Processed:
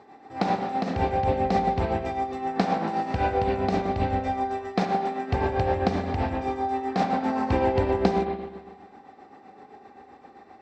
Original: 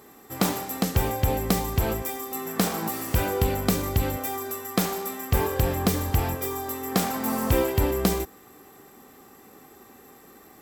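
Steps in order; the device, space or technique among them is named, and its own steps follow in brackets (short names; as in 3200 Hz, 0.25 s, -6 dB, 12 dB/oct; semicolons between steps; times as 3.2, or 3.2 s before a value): 3.81–4.28 steep low-pass 8400 Hz; combo amplifier with spring reverb and tremolo (spring tank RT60 1.3 s, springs 42/56 ms, chirp 30 ms, DRR 2 dB; tremolo 7.7 Hz, depth 52%; speaker cabinet 80–4400 Hz, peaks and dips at 140 Hz -5 dB, 780 Hz +10 dB, 1200 Hz -4 dB, 3200 Hz -7 dB)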